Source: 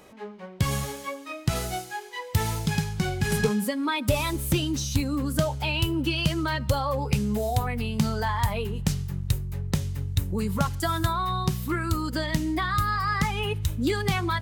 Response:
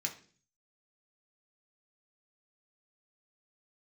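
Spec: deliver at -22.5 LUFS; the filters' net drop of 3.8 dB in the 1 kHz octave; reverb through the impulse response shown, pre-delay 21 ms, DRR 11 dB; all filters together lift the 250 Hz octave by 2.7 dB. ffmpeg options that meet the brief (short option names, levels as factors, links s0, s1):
-filter_complex "[0:a]equalizer=f=250:t=o:g=4,equalizer=f=1000:t=o:g=-5,asplit=2[s0][s1];[1:a]atrim=start_sample=2205,adelay=21[s2];[s1][s2]afir=irnorm=-1:irlink=0,volume=0.237[s3];[s0][s3]amix=inputs=2:normalize=0,volume=1.58"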